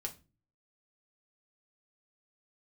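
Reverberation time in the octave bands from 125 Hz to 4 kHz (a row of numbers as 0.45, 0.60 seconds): 0.65, 0.55, 0.35, 0.25, 0.25, 0.25 seconds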